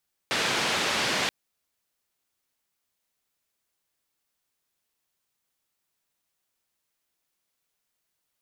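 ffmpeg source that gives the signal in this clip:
-f lavfi -i "anoisesrc=c=white:d=0.98:r=44100:seed=1,highpass=f=130,lowpass=f=3800,volume=-14.3dB"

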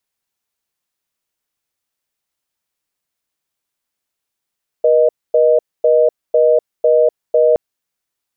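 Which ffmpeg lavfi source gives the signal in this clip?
-f lavfi -i "aevalsrc='0.282*(sin(2*PI*480*t)+sin(2*PI*620*t))*clip(min(mod(t,0.5),0.25-mod(t,0.5))/0.005,0,1)':d=2.72:s=44100"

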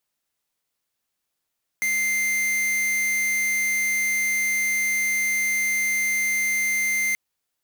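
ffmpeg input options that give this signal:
-f lavfi -i "aevalsrc='0.0708*(2*lt(mod(2090*t,1),0.5)-1)':d=5.33:s=44100"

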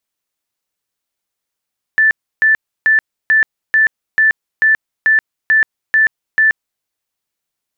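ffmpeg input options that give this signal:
-f lavfi -i "aevalsrc='0.422*sin(2*PI*1760*mod(t,0.44))*lt(mod(t,0.44),227/1760)':d=4.84:s=44100"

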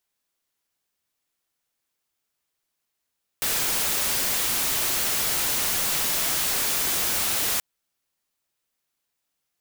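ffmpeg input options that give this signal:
-f lavfi -i "anoisesrc=c=white:a=0.103:d=4.18:r=44100:seed=1"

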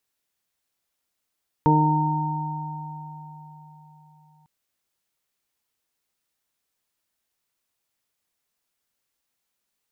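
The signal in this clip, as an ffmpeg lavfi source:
-f lavfi -i "aevalsrc='0.126*pow(10,-3*t/4.3)*sin(2*PI*153*t)+0.112*pow(10,-3*t/2.18)*sin(2*PI*306*t)+0.0708*pow(10,-3*t/0.71)*sin(2*PI*459*t)+0.0158*pow(10,-3*t/0.85)*sin(2*PI*612*t)+0.0178*pow(10,-3*t/4.92)*sin(2*PI*765*t)+0.141*pow(10,-3*t/3.85)*sin(2*PI*918*t)':d=2.8:s=44100"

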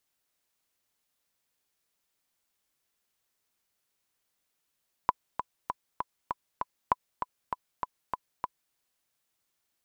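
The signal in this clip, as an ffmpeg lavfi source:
-f lavfi -i "aevalsrc='pow(10,(-9-8*gte(mod(t,6*60/197),60/197))/20)*sin(2*PI*998*mod(t,60/197))*exp(-6.91*mod(t,60/197)/0.03)':d=3.65:s=44100"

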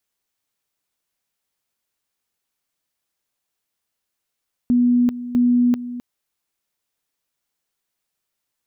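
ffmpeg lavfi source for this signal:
-f lavfi -i "aevalsrc='pow(10,(-12.5-14*gte(mod(t,0.65),0.39))/20)*sin(2*PI*244*t)':d=1.3:s=44100"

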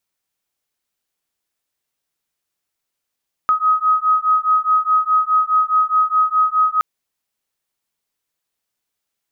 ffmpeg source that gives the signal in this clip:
-f lavfi -i "aevalsrc='0.158*(sin(2*PI*1260*t)+sin(2*PI*1264.8*t))':d=3.32:s=44100"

